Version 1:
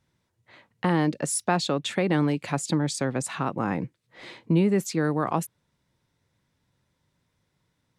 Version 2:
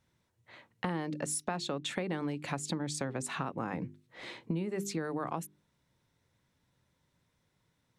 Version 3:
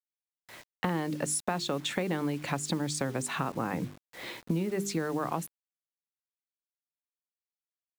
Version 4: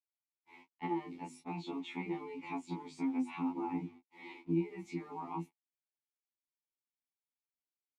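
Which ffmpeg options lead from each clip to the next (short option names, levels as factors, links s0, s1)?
-af "bandreject=f=50:t=h:w=6,bandreject=f=100:t=h:w=6,bandreject=f=150:t=h:w=6,bandreject=f=200:t=h:w=6,bandreject=f=250:t=h:w=6,bandreject=f=300:t=h:w=6,bandreject=f=350:t=h:w=6,bandreject=f=400:t=h:w=6,acompressor=threshold=0.0316:ratio=6,bandreject=f=4800:w=24,volume=0.841"
-af "acrusher=bits=8:mix=0:aa=0.000001,volume=1.58"
-filter_complex "[0:a]asplit=3[s0][s1][s2];[s0]bandpass=f=300:t=q:w=8,volume=1[s3];[s1]bandpass=f=870:t=q:w=8,volume=0.501[s4];[s2]bandpass=f=2240:t=q:w=8,volume=0.355[s5];[s3][s4][s5]amix=inputs=3:normalize=0,flanger=delay=18:depth=4.7:speed=1.3,afftfilt=real='re*2*eq(mod(b,4),0)':imag='im*2*eq(mod(b,4),0)':win_size=2048:overlap=0.75,volume=3.55"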